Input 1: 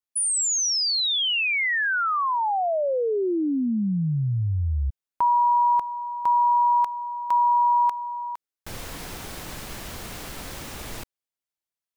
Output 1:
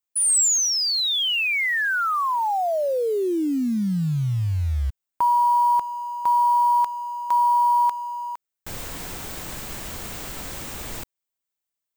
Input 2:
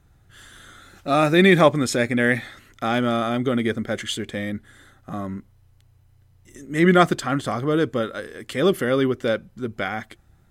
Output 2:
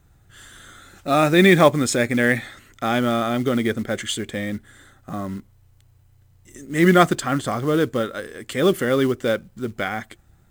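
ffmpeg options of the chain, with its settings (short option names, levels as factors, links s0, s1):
-af "aexciter=amount=1.6:drive=2.9:freq=7000,acrusher=bits=6:mode=log:mix=0:aa=0.000001,volume=1.12"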